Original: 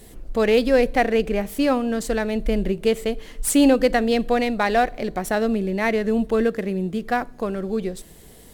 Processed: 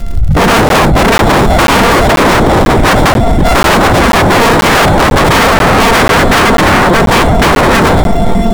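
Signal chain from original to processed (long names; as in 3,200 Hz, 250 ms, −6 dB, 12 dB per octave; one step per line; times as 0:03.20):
samples sorted by size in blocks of 64 samples
brickwall limiter −15.5 dBFS, peak gain reduction 10 dB
automatic gain control gain up to 11 dB
spectral tilt −2.5 dB per octave
rectangular room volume 2,600 cubic metres, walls furnished, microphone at 1.1 metres
downward compressor 6 to 1, threshold −6 dBFS, peak gain reduction 11.5 dB
low-shelf EQ 140 Hz +6 dB
on a send: feedback delay with all-pass diffusion 683 ms, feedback 48%, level −15.5 dB
on the sum: sine wavefolder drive 19 dB, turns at 5 dBFS
surface crackle 110 per second −11 dBFS
regular buffer underruns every 0.49 s, samples 512, zero, from 0:00.69
level −8.5 dB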